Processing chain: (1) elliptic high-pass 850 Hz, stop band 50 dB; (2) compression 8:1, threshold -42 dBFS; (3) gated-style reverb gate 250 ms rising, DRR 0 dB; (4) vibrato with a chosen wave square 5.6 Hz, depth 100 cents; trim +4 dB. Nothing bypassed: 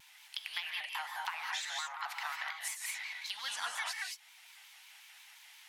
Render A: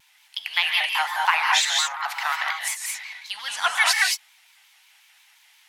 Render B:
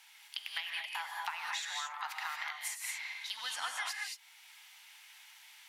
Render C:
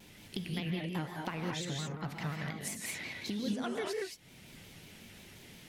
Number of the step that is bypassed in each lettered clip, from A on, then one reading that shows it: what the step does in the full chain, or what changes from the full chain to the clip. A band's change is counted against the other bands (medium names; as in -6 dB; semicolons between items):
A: 2, mean gain reduction 12.5 dB; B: 4, 500 Hz band -2.0 dB; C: 1, 500 Hz band +23.0 dB